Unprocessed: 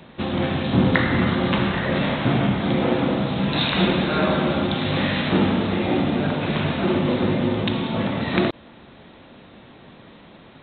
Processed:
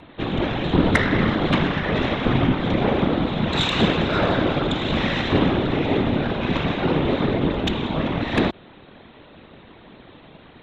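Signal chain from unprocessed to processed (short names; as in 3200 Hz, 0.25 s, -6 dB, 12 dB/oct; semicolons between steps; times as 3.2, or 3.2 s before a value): added harmonics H 6 -21 dB, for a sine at -2.5 dBFS; whisperiser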